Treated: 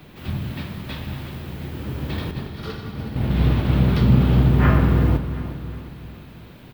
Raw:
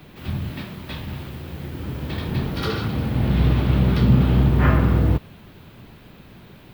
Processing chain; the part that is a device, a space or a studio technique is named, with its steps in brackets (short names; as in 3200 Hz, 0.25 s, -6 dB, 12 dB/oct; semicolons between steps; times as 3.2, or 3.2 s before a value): 2.31–3.65 expander -16 dBFS; feedback echo 0.362 s, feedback 46%, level -13 dB; saturated reverb return (on a send at -8 dB: reverb RT60 1.6 s, pre-delay 0.108 s + soft clip -20.5 dBFS, distortion -6 dB)